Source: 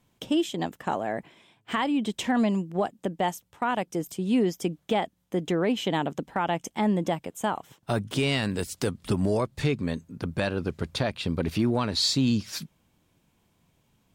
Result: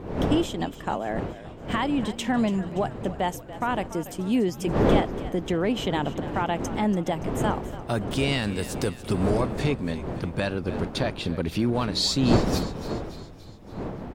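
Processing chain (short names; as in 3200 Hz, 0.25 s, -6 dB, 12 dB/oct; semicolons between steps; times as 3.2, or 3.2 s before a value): wind noise 420 Hz -31 dBFS; frequency-shifting echo 0.286 s, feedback 57%, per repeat -57 Hz, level -14.5 dB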